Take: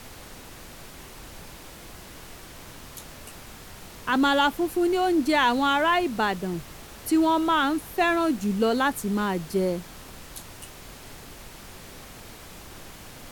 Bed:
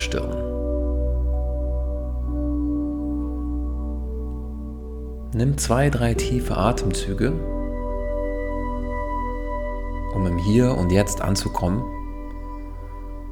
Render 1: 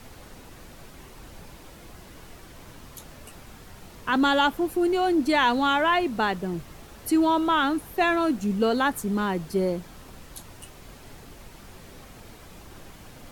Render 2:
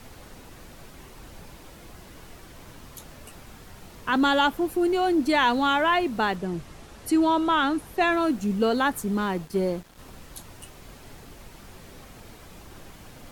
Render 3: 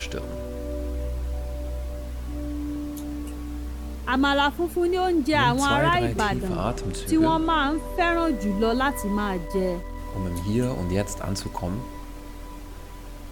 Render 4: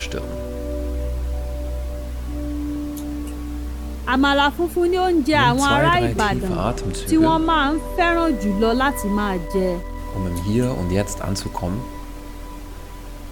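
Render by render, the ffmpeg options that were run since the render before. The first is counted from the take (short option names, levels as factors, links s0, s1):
-af "afftdn=nr=6:nf=-45"
-filter_complex "[0:a]asettb=1/sr,asplit=3[s0][s1][s2];[s0]atrim=end=6.364[s3];[s1]atrim=start=6.36:end=8.12,asetpts=PTS-STARTPTS,afade=t=in:d=0.004:c=qsin,afade=t=out:st=1.756:d=0.004:c=qsin,lowpass=11000[s4];[s2]atrim=start=8.116[s5];[s3][s4]acrossfade=d=0.004:c1=hsin:c2=qsin[s6];[s6][s5]acrossfade=d=0.004:c1=qsin:c2=hsin,asettb=1/sr,asplit=3[s7][s8][s9];[s7]atrim=end=9.204[s10];[s8]atrim=start=9.2:end=9.99,asetpts=PTS-STARTPTS,afade=t=in:d=0.004:c=qsin,afade=t=out:st=0.786:d=0.004:c=qsin,aeval=exprs='sgn(val(0))*max(abs(val(0))-0.00501,0)':c=same[s11];[s9]atrim=start=9.986[s12];[s10][s11]acrossfade=d=0.004:c1=hsin:c2=qsin[s13];[s13][s12]acrossfade=d=0.004:c1=qsin:c2=hsin"
-filter_complex "[1:a]volume=0.447[s0];[0:a][s0]amix=inputs=2:normalize=0"
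-af "volume=1.68"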